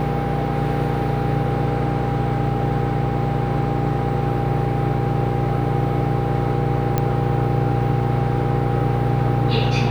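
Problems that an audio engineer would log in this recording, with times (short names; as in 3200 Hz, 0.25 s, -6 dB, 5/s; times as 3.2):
hum 60 Hz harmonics 8 -25 dBFS
tone 800 Hz -27 dBFS
6.98 pop -7 dBFS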